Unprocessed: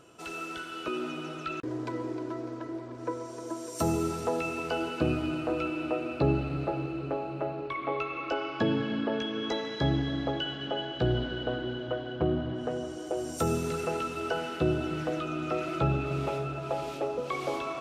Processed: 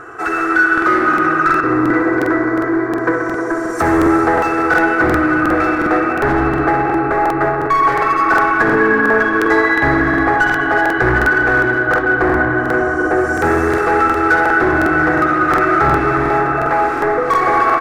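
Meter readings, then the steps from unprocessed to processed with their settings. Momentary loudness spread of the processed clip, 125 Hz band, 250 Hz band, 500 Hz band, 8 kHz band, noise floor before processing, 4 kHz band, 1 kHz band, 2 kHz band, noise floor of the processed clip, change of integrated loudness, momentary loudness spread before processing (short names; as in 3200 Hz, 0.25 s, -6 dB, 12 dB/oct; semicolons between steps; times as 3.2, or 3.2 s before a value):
4 LU, +8.5 dB, +15.5 dB, +15.0 dB, n/a, -40 dBFS, +2.5 dB, +22.0 dB, +26.5 dB, -19 dBFS, +18.0 dB, 8 LU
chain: bell 1400 Hz +11.5 dB 1.5 oct; comb 2.6 ms, depth 83%; in parallel at +3 dB: vocal rider within 3 dB 2 s; on the sum: hard clip -17.5 dBFS, distortion -8 dB; resonant high shelf 2300 Hz -9 dB, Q 3; darkening echo 64 ms, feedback 83%, low-pass 5000 Hz, level -7.5 dB; crackling interface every 0.36 s, samples 2048, repeat, from 0.73; gain +4.5 dB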